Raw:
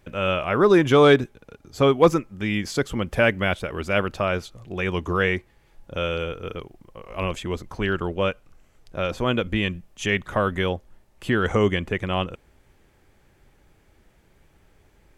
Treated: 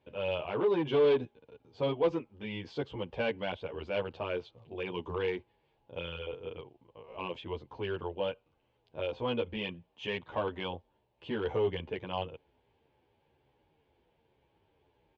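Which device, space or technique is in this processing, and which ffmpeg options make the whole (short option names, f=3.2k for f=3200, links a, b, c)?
barber-pole flanger into a guitar amplifier: -filter_complex "[0:a]asettb=1/sr,asplit=3[a][b][c];[a]atrim=end=9.244[d];[b]atrim=start=9.24:end=10.67,asetpts=PTS-STARTPTS,afade=t=in:d=0.004:c=qsin,afade=t=out:st=1.426:d=0.004:c=qsin,equalizer=f=1.2k:t=o:w=2.5:g=2.5[e];[c]atrim=start=10.666[f];[d][e]acrossfade=d=0.004:c1=hsin:c2=qsin[g];[g][f]acrossfade=d=0.004:c1=qsin:c2=hsin,asplit=2[h][i];[i]adelay=10.9,afreqshift=-2.1[j];[h][j]amix=inputs=2:normalize=1,asoftclip=type=tanh:threshold=-16.5dB,highpass=87,equalizer=f=190:t=q:w=4:g=-6,equalizer=f=460:t=q:w=4:g=6,equalizer=f=910:t=q:w=4:g=8,equalizer=f=1.3k:t=q:w=4:g=-9,equalizer=f=1.9k:t=q:w=4:g=-7,equalizer=f=3k:t=q:w=4:g=4,lowpass=f=3.9k:w=0.5412,lowpass=f=3.9k:w=1.3066,volume=-8dB"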